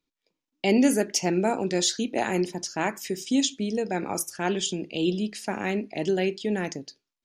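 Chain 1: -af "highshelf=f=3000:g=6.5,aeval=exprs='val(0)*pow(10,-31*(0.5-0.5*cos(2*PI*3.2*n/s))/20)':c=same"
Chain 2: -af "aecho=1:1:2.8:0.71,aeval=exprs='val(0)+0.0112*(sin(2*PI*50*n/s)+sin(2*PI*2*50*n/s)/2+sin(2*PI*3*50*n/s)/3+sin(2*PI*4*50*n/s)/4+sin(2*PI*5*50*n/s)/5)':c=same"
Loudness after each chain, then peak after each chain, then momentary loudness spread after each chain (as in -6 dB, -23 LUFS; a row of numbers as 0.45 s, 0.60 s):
-30.0 LUFS, -24.5 LUFS; -7.0 dBFS, -8.0 dBFS; 17 LU, 10 LU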